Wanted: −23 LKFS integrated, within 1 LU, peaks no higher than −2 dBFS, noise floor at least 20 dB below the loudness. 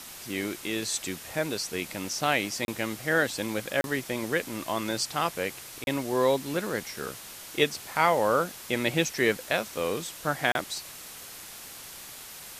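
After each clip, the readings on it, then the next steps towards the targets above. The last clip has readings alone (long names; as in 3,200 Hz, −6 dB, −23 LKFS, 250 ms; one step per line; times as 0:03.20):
number of dropouts 4; longest dropout 31 ms; background noise floor −44 dBFS; target noise floor −49 dBFS; integrated loudness −28.5 LKFS; sample peak −8.0 dBFS; target loudness −23.0 LKFS
→ repair the gap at 0:02.65/0:03.81/0:05.84/0:10.52, 31 ms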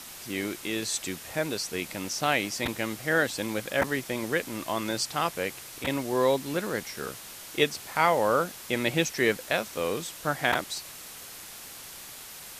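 number of dropouts 0; background noise floor −44 dBFS; target noise floor −49 dBFS
→ broadband denoise 6 dB, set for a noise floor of −44 dBFS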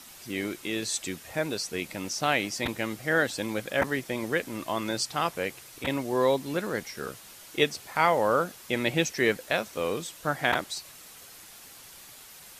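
background noise floor −49 dBFS; integrated loudness −29.0 LKFS; sample peak −8.5 dBFS; target loudness −23.0 LKFS
→ level +6 dB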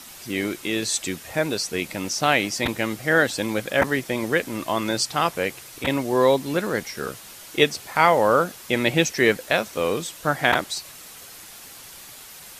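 integrated loudness −23.0 LKFS; sample peak −2.5 dBFS; background noise floor −43 dBFS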